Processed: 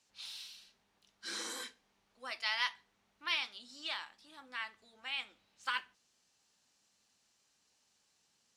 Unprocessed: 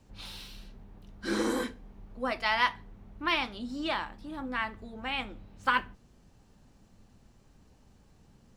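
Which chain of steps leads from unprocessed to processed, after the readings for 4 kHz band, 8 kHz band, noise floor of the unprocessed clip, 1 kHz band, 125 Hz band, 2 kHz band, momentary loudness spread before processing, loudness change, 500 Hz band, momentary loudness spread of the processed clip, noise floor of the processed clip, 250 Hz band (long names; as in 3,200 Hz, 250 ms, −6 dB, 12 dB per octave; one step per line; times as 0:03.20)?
−2.0 dB, 0.0 dB, −62 dBFS, −12.5 dB, below −25 dB, −7.0 dB, 18 LU, −7.0 dB, −18.5 dB, 15 LU, −76 dBFS, −23.5 dB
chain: resonant band-pass 5,900 Hz, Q 0.78
level +1 dB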